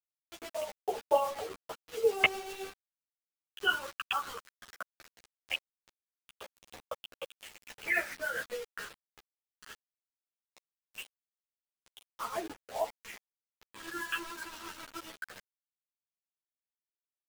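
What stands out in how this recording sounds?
phasing stages 12, 0.19 Hz, lowest notch 660–2000 Hz; a quantiser's noise floor 8-bit, dither none; tremolo triangle 7.3 Hz, depth 45%; a shimmering, thickened sound

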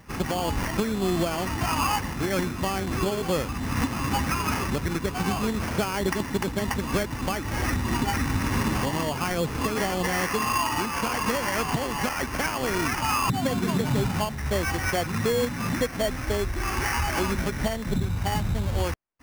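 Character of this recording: aliases and images of a low sample rate 3800 Hz, jitter 0%

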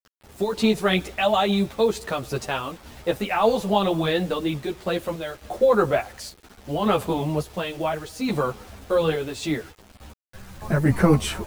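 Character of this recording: random-step tremolo, depth 65%; a quantiser's noise floor 8-bit, dither none; a shimmering, thickened sound

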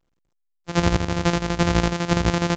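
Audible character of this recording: a buzz of ramps at a fixed pitch in blocks of 256 samples; chopped level 12 Hz, depth 60%, duty 60%; A-law

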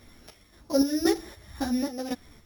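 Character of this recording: a buzz of ramps at a fixed pitch in blocks of 8 samples; chopped level 1.9 Hz, depth 60%, duty 55%; a quantiser's noise floor 12-bit, dither none; a shimmering, thickened sound

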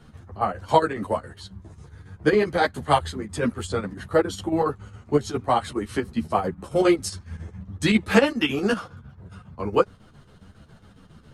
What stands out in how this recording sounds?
chopped level 7.3 Hz, depth 60%, duty 70%; a shimmering, thickened sound

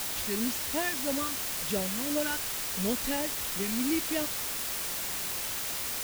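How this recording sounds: phasing stages 2, 2.9 Hz, lowest notch 550–1300 Hz; a quantiser's noise floor 6-bit, dither triangular

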